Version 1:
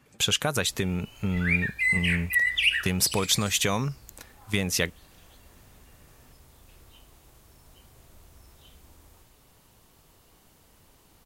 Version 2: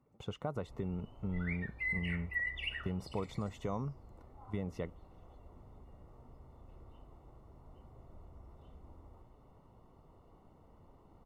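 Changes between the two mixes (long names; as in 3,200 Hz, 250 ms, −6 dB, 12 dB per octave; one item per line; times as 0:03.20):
speech −10.0 dB
master: add Savitzky-Golay smoothing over 65 samples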